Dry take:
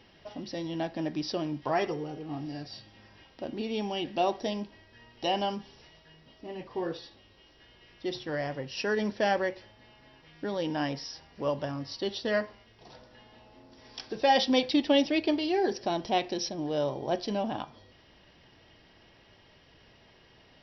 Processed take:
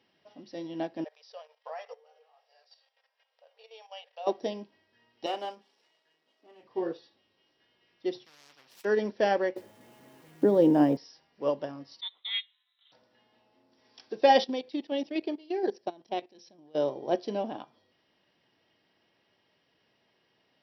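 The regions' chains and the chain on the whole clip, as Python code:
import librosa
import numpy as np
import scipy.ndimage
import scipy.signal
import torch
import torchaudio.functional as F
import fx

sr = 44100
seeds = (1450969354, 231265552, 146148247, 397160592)

y = fx.chain(x, sr, fx.level_steps(step_db=11),
    fx.brickwall_highpass(low_hz=440.0), at=(1.04, 4.27))
y = fx.chain(y, sr, fx.halfwave_gain(db=-7.0),
    fx.highpass(hz=350.0, slope=12),
    fx.doubler(ms=34.0, db=-13.5), at=(5.26, 6.63))
y = fx.chain(y, sr, fx.peak_eq(hz=2300.0, db=-13.0, octaves=2.4),
    fx.power_curve(exponent=1.4),
    fx.spectral_comp(ratio=10.0), at=(8.25, 8.85))
y = fx.chain(y, sr, fx.crossing_spikes(level_db=-35.0),
    fx.tilt_shelf(db=10.0, hz=1100.0),
    fx.band_squash(depth_pct=40), at=(9.56, 10.97))
y = fx.chain(y, sr, fx.freq_invert(carrier_hz=3900),
    fx.highpass(hz=1400.0, slope=12),
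    fx.transient(attack_db=0, sustain_db=-6), at=(12.01, 12.92))
y = fx.chain(y, sr, fx.level_steps(step_db=14),
    fx.tremolo_shape(shape='saw_down', hz=4.2, depth_pct=45), at=(14.44, 16.75))
y = scipy.signal.sosfilt(scipy.signal.butter(2, 170.0, 'highpass', fs=sr, output='sos'), y)
y = fx.dynamic_eq(y, sr, hz=410.0, q=0.9, threshold_db=-41.0, ratio=4.0, max_db=7)
y = fx.upward_expand(y, sr, threshold_db=-40.0, expansion=1.5)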